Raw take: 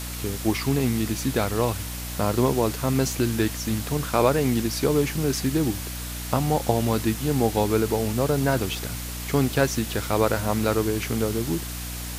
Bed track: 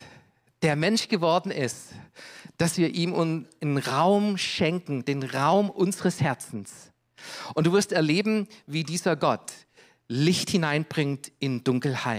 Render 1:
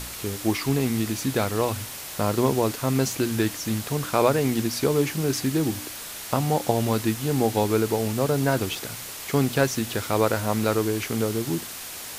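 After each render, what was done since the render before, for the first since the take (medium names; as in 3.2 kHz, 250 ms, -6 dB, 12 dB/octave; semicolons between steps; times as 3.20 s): de-hum 60 Hz, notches 5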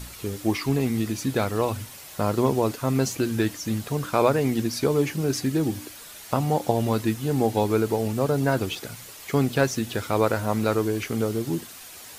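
noise reduction 8 dB, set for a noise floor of -37 dBFS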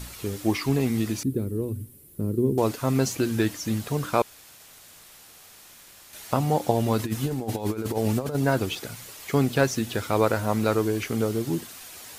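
1.23–2.58 s: FFT filter 400 Hz 0 dB, 700 Hz -26 dB, 6.4 kHz -23 dB, 10 kHz -6 dB; 4.22–6.13 s: room tone; 6.99–8.35 s: compressor with a negative ratio -26 dBFS, ratio -0.5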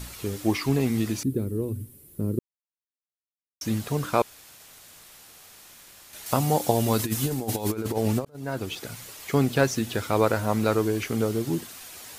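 2.39–3.61 s: mute; 6.26–7.72 s: treble shelf 4.5 kHz +10 dB; 8.25–8.93 s: fade in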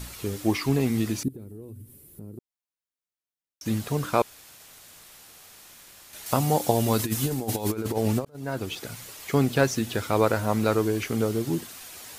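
1.28–3.66 s: compression 3:1, threshold -42 dBFS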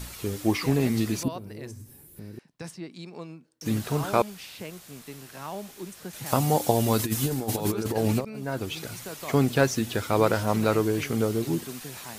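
add bed track -15.5 dB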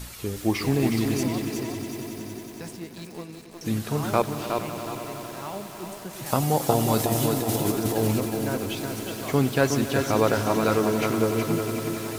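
on a send: echo with a slow build-up 92 ms, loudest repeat 5, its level -15.5 dB; on the sum: bit-crushed delay 365 ms, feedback 35%, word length 7-bit, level -5 dB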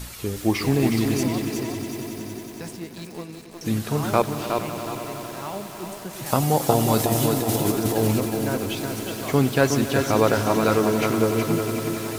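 trim +2.5 dB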